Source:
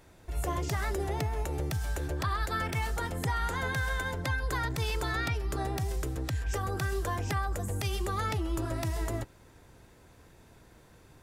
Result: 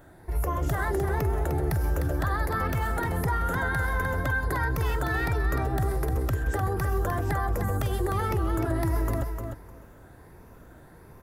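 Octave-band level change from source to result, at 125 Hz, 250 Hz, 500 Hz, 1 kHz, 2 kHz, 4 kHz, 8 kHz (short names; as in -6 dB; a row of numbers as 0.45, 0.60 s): +5.5, +6.0, +5.5, +4.5, +4.0, -5.0, -1.5 dB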